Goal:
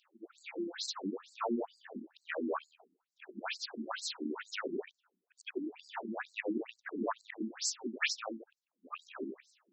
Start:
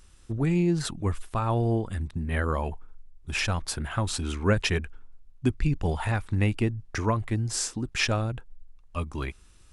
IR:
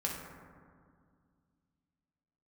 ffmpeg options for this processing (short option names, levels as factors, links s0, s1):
-af "afftfilt=real='re':imag='-im':win_size=8192:overlap=0.75,afftfilt=real='re*lt(hypot(re,im),0.2)':imag='im*lt(hypot(re,im),0.2)':win_size=1024:overlap=0.75,afftfilt=real='re*between(b*sr/1024,250*pow(5900/250,0.5+0.5*sin(2*PI*2.2*pts/sr))/1.41,250*pow(5900/250,0.5+0.5*sin(2*PI*2.2*pts/sr))*1.41)':imag='im*between(b*sr/1024,250*pow(5900/250,0.5+0.5*sin(2*PI*2.2*pts/sr))/1.41,250*pow(5900/250,0.5+0.5*sin(2*PI*2.2*pts/sr))*1.41)':win_size=1024:overlap=0.75,volume=1.78"